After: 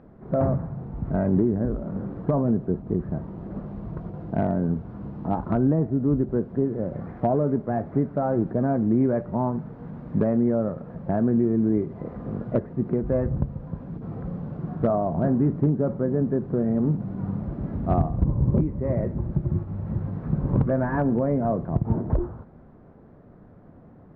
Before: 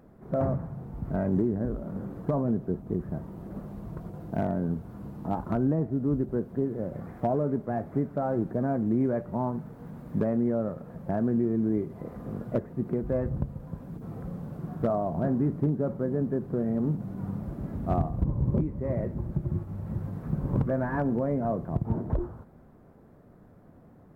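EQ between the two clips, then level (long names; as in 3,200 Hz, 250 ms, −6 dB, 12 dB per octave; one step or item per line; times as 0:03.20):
high-frequency loss of the air 260 metres
+5.0 dB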